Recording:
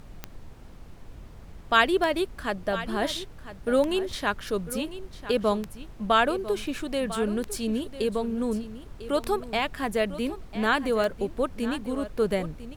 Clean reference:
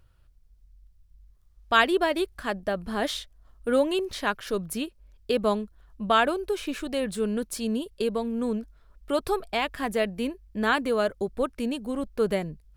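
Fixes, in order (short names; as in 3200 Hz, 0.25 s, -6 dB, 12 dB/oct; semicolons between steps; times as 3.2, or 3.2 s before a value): de-click; noise print and reduce 13 dB; inverse comb 0.999 s -14 dB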